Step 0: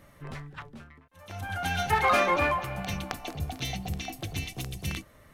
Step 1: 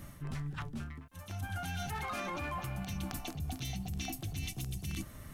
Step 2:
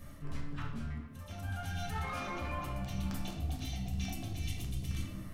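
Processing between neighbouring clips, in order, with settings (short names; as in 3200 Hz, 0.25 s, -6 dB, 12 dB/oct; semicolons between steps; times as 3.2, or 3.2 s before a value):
ten-band EQ 500 Hz -11 dB, 1000 Hz -5 dB, 2000 Hz -7 dB, 4000 Hz -4 dB; limiter -28.5 dBFS, peak gain reduction 10.5 dB; reverse; compressor 6:1, threshold -46 dBFS, peak gain reduction 13 dB; reverse; gain +10 dB
reverb RT60 1.2 s, pre-delay 4 ms, DRR -2.5 dB; gain -6 dB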